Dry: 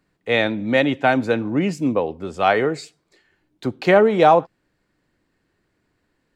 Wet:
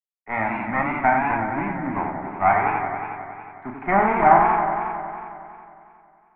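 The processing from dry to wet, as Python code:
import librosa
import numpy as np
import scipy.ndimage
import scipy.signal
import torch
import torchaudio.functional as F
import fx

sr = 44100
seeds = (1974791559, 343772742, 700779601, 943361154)

y = scipy.signal.sosfilt(scipy.signal.butter(4, 100.0, 'highpass', fs=sr, output='sos'), x)
y = fx.low_shelf(y, sr, hz=150.0, db=-10.0)
y = fx.quant_companded(y, sr, bits=4)
y = fx.cheby_harmonics(y, sr, harmonics=(4,), levels_db=(-13,), full_scale_db=-2.5)
y = scipy.signal.sosfilt(scipy.signal.cheby1(6, 9, 3000.0, 'lowpass', fs=sr, output='sos'), y)
y = fx.fixed_phaser(y, sr, hz=1200.0, stages=4)
y = fx.doubler(y, sr, ms=36.0, db=-5.0)
y = fx.echo_warbled(y, sr, ms=91, feedback_pct=79, rate_hz=2.8, cents=140, wet_db=-5.5)
y = y * 10.0 ** (4.0 / 20.0)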